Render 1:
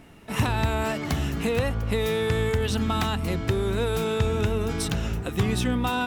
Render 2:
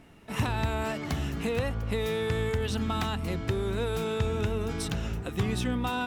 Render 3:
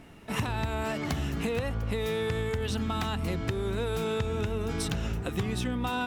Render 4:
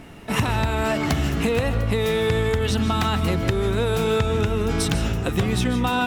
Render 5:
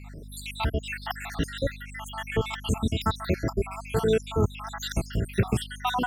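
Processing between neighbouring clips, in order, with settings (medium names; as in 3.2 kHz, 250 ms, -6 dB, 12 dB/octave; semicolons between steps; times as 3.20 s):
treble shelf 9.9 kHz -4 dB; trim -4.5 dB
compression, threshold -30 dBFS, peak gain reduction 8 dB; trim +3.5 dB
reverberation RT60 0.30 s, pre-delay 110 ms, DRR 9.5 dB; trim +8.5 dB
random holes in the spectrogram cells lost 74%; hum 50 Hz, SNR 14 dB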